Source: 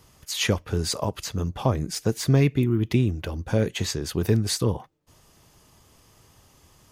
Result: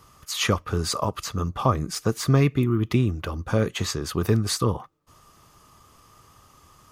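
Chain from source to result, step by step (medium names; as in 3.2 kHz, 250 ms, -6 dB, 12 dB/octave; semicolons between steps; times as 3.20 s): peaking EQ 1.2 kHz +14.5 dB 0.32 oct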